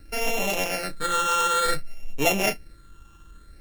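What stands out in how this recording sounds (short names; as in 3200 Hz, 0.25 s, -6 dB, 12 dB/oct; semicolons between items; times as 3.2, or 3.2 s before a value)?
a buzz of ramps at a fixed pitch in blocks of 32 samples; phasing stages 8, 0.56 Hz, lowest notch 640–1400 Hz; a quantiser's noise floor 12-bit, dither none; AAC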